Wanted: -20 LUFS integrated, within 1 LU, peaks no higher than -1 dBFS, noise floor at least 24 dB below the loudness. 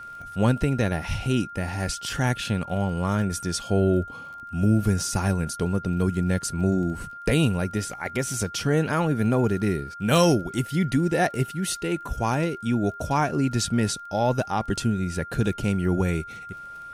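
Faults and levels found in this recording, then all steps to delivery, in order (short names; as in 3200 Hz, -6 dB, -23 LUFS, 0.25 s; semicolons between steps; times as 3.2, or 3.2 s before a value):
ticks 26/s; steady tone 1400 Hz; tone level -37 dBFS; loudness -25.0 LUFS; peak -7.5 dBFS; loudness target -20.0 LUFS
-> de-click; notch 1400 Hz, Q 30; gain +5 dB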